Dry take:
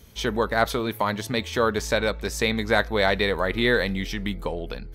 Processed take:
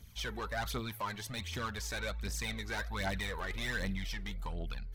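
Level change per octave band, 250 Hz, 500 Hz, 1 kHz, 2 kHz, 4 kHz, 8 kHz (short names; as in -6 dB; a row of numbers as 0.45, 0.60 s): -15.5, -20.0, -14.0, -13.0, -12.0, -7.5 dB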